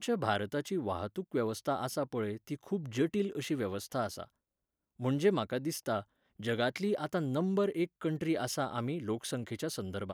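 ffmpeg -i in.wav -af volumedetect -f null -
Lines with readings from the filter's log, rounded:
mean_volume: -34.3 dB
max_volume: -16.2 dB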